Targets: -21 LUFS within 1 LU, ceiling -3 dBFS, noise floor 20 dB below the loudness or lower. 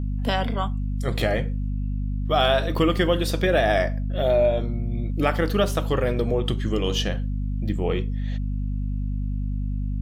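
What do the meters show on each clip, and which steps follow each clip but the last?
hum 50 Hz; highest harmonic 250 Hz; hum level -23 dBFS; loudness -24.5 LUFS; peak level -6.0 dBFS; loudness target -21.0 LUFS
-> de-hum 50 Hz, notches 5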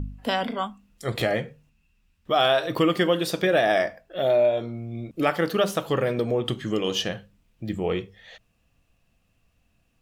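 hum not found; loudness -25.0 LUFS; peak level -7.5 dBFS; loudness target -21.0 LUFS
-> trim +4 dB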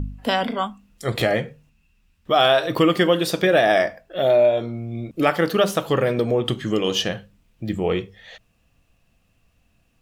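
loudness -21.0 LUFS; peak level -3.5 dBFS; noise floor -64 dBFS

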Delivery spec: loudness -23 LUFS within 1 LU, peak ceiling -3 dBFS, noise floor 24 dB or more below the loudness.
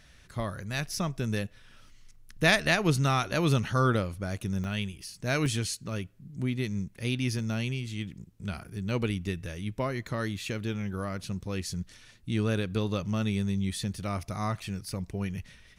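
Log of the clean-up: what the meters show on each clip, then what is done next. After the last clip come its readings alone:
dropouts 3; longest dropout 1.7 ms; loudness -31.0 LUFS; peak level -8.5 dBFS; loudness target -23.0 LUFS
-> interpolate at 4.64/5.46/7.39 s, 1.7 ms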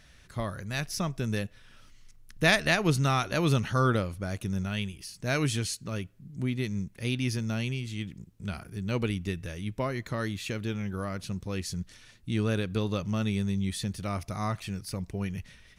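dropouts 0; loudness -31.0 LUFS; peak level -8.5 dBFS; loudness target -23.0 LUFS
-> trim +8 dB; peak limiter -3 dBFS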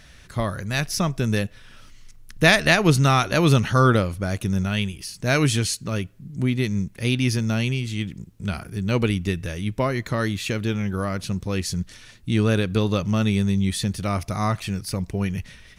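loudness -23.0 LUFS; peak level -3.0 dBFS; noise floor -49 dBFS

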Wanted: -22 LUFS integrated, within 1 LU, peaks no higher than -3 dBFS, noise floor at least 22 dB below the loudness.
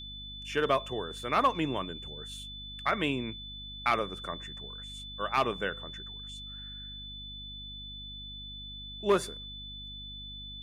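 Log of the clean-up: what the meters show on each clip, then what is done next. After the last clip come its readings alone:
hum 50 Hz; highest harmonic 250 Hz; hum level -45 dBFS; steady tone 3.5 kHz; tone level -42 dBFS; loudness -34.0 LUFS; peak level -13.5 dBFS; loudness target -22.0 LUFS
-> de-hum 50 Hz, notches 5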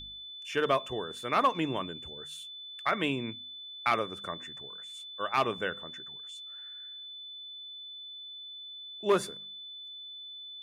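hum not found; steady tone 3.5 kHz; tone level -42 dBFS
-> band-stop 3.5 kHz, Q 30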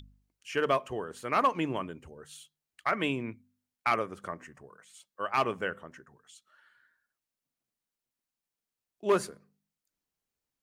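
steady tone not found; loudness -31.5 LUFS; peak level -14.0 dBFS; loudness target -22.0 LUFS
-> trim +9.5 dB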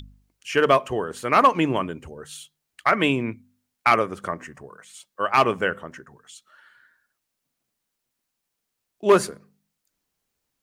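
loudness -22.0 LUFS; peak level -4.5 dBFS; noise floor -81 dBFS

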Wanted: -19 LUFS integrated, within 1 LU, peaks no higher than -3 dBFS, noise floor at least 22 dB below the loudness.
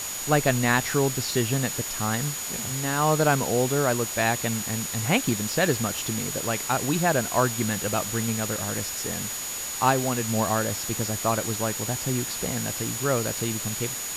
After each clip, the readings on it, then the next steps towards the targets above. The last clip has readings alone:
steady tone 6.8 kHz; tone level -33 dBFS; noise floor -33 dBFS; noise floor target -47 dBFS; loudness -25.0 LUFS; peak level -6.5 dBFS; loudness target -19.0 LUFS
-> band-stop 6.8 kHz, Q 30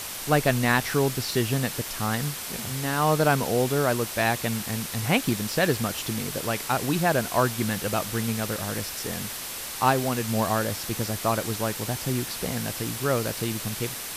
steady tone not found; noise floor -35 dBFS; noise floor target -48 dBFS
-> noise reduction 13 dB, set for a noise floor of -35 dBFS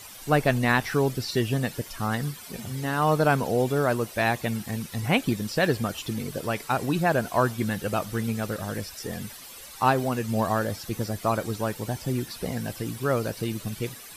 noise floor -44 dBFS; noise floor target -49 dBFS
-> noise reduction 6 dB, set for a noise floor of -44 dBFS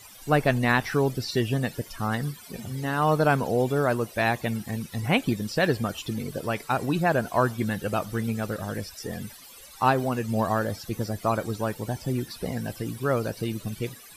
noise floor -47 dBFS; noise floor target -49 dBFS
-> noise reduction 6 dB, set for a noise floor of -47 dBFS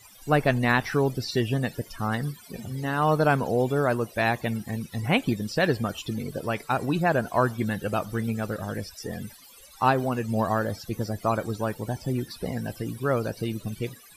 noise floor -50 dBFS; loudness -27.0 LUFS; peak level -7.5 dBFS; loudness target -19.0 LUFS
-> trim +8 dB; peak limiter -3 dBFS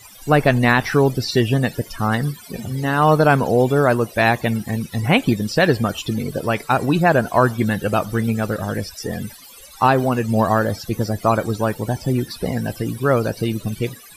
loudness -19.5 LUFS; peak level -3.0 dBFS; noise floor -42 dBFS

